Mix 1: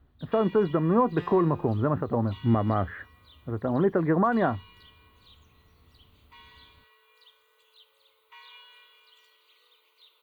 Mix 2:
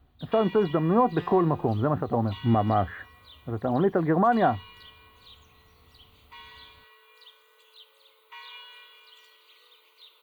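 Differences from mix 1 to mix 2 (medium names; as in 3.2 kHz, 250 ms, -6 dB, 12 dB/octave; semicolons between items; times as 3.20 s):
speech: add peaking EQ 740 Hz +8.5 dB 0.22 oct; first sound +5.5 dB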